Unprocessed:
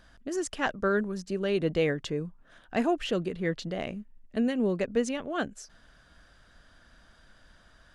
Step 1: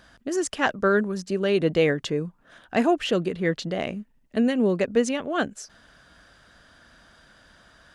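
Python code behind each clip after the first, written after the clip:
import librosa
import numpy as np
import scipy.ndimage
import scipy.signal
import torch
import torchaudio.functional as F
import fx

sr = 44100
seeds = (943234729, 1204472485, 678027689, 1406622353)

y = fx.highpass(x, sr, hz=110.0, slope=6)
y = y * 10.0 ** (6.0 / 20.0)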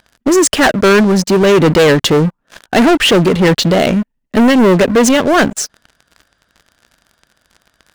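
y = fx.leveller(x, sr, passes=5)
y = y * 10.0 ** (3.0 / 20.0)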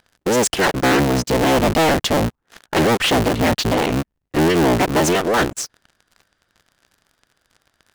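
y = fx.cycle_switch(x, sr, every=3, mode='inverted')
y = y * 10.0 ** (-7.0 / 20.0)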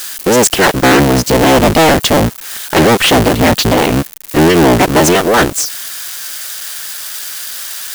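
y = x + 0.5 * 10.0 ** (-21.0 / 20.0) * np.diff(np.sign(x), prepend=np.sign(x[:1]))
y = y * 10.0 ** (7.5 / 20.0)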